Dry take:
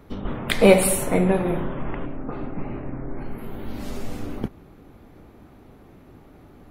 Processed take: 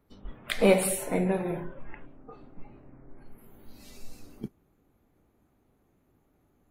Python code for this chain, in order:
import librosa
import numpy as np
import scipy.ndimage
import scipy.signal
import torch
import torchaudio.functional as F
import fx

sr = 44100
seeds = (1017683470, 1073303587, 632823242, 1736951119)

y = fx.noise_reduce_blind(x, sr, reduce_db=13)
y = fx.high_shelf_res(y, sr, hz=3300.0, db=9.0, q=1.5, at=(2.07, 2.9))
y = y * 10.0 ** (-7.0 / 20.0)